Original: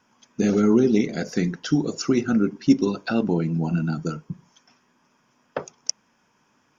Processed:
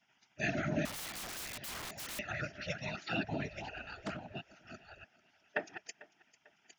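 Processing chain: chunks repeated in reverse 630 ms, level -9 dB; whisper effect; vowel filter e; in parallel at -2 dB: peak limiter -26.5 dBFS, peak gain reduction 8.5 dB; on the sum: spectral gate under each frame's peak -15 dB weak; on a send: thinning echo 446 ms, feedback 41%, high-pass 230 Hz, level -20 dB; 0.85–2.19 s: on the sum: integer overflow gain 47 dB; peaking EQ 450 Hz -3.5 dB 0.75 oct; 3.59–4.30 s: loudspeaker Doppler distortion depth 0.25 ms; trim +9 dB

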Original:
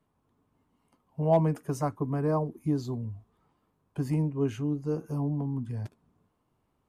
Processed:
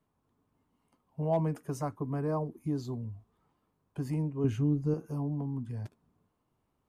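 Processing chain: in parallel at -3 dB: peak limiter -23 dBFS, peak gain reduction 10 dB; 4.44–4.94 s: on the sum: bass shelf 270 Hz +10.5 dB; trim -8 dB

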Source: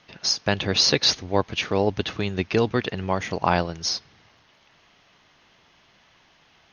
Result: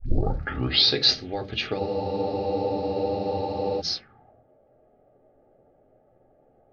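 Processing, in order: tape start-up on the opening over 0.98 s; treble shelf 2.5 kHz -12 dB; peak limiter -13.5 dBFS, peak gain reduction 7.5 dB; crackle 240 per s -53 dBFS; Butterworth band-stop 1 kHz, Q 3.6; reverberation RT60 0.30 s, pre-delay 3 ms, DRR 4.5 dB; spectral freeze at 1.81 s, 1.98 s; touch-sensitive low-pass 540–4500 Hz up, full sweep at -27 dBFS; trim -2 dB

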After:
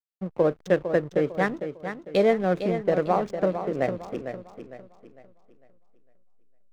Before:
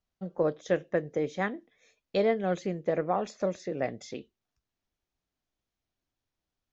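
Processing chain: local Wiener filter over 9 samples; hysteresis with a dead band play -41 dBFS; modulated delay 453 ms, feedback 36%, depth 68 cents, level -9 dB; trim +5.5 dB

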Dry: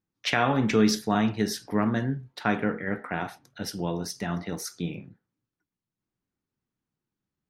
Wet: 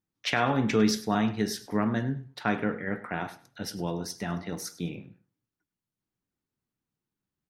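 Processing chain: feedback delay 101 ms, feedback 23%, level -18 dB; trim -2 dB

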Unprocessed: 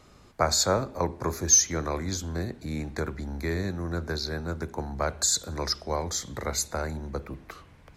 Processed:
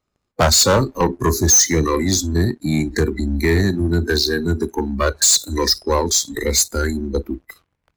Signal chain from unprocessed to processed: waveshaping leveller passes 3; spectral noise reduction 22 dB; saturation -14.5 dBFS, distortion -15 dB; trim +5.5 dB

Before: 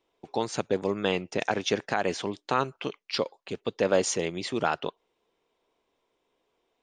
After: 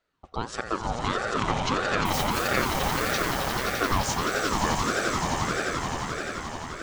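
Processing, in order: 2.05–2.48 s: zero-crossing glitches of -24 dBFS; echo with a slow build-up 87 ms, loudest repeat 8, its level -6.5 dB; ring modulator with a swept carrier 670 Hz, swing 50%, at 1.6 Hz

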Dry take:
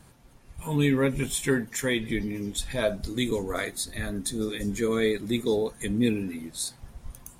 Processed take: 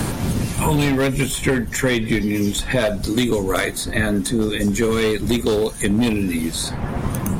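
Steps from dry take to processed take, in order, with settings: wind noise 110 Hz -42 dBFS; overload inside the chain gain 21.5 dB; three bands compressed up and down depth 100%; trim +8.5 dB

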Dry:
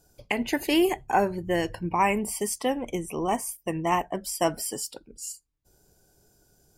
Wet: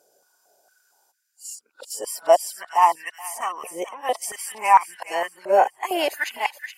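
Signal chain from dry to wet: reverse the whole clip; feedback echo behind a high-pass 423 ms, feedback 34%, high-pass 1.7 kHz, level -9.5 dB; step-sequenced high-pass 4.4 Hz 550–1700 Hz

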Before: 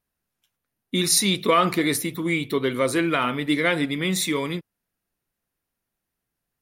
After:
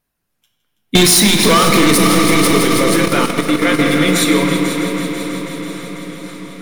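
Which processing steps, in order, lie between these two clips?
reverb removal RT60 0.6 s; 0.95–1.98 s: waveshaping leveller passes 5; multi-head delay 164 ms, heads all three, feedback 69%, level -15 dB; compression 2.5:1, threshold -14 dBFS, peak gain reduction 4.5 dB; simulated room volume 210 m³, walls hard, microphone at 0.4 m; 2.58–3.80 s: level held to a coarse grid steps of 10 dB; loudness maximiser +9 dB; modulated delay 519 ms, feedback 77%, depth 60 cents, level -19.5 dB; trim -1.5 dB

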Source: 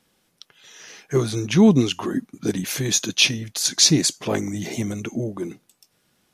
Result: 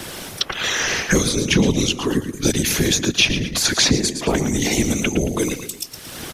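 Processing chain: feedback delay 112 ms, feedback 26%, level -11 dB; whisper effect; three bands compressed up and down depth 100%; trim +3.5 dB

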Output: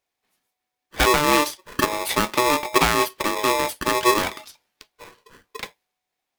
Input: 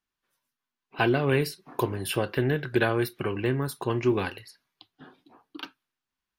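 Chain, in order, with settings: polarity switched at an audio rate 740 Hz; trim +5.5 dB

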